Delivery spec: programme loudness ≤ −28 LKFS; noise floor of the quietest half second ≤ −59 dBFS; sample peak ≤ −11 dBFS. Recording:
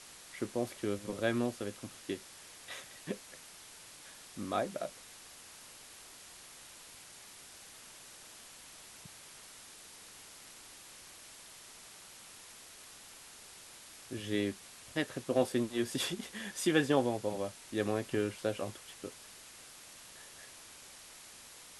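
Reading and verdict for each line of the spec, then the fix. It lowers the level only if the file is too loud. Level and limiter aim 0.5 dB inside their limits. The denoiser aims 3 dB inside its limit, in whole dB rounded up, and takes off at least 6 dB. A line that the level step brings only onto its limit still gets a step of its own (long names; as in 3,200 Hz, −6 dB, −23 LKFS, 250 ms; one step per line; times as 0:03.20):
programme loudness −36.0 LKFS: in spec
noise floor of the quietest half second −53 dBFS: out of spec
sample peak −14.5 dBFS: in spec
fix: broadband denoise 9 dB, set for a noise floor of −53 dBFS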